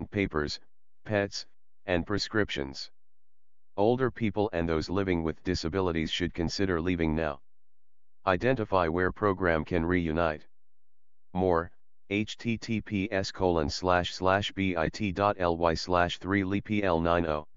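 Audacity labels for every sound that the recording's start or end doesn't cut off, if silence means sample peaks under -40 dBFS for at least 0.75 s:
3.770000	7.350000	sound
8.260000	10.370000	sound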